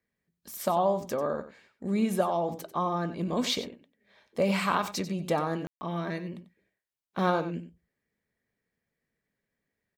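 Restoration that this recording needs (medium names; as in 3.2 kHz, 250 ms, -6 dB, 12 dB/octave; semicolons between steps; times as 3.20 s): room tone fill 5.67–5.81 s; inverse comb 93 ms -13 dB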